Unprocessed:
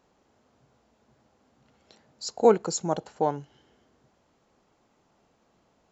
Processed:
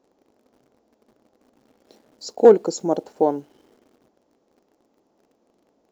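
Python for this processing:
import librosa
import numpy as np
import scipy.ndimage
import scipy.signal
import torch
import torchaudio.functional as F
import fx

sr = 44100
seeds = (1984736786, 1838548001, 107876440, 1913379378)

p1 = fx.curve_eq(x, sr, hz=(140.0, 280.0, 520.0, 1300.0, 2800.0, 5600.0, 8900.0), db=(0, 15, 13, 2, 1, 6, -1))
p2 = fx.quant_dither(p1, sr, seeds[0], bits=8, dither='none')
p3 = p1 + (p2 * 10.0 ** (-5.0 / 20.0))
y = p3 * 10.0 ** (-9.0 / 20.0)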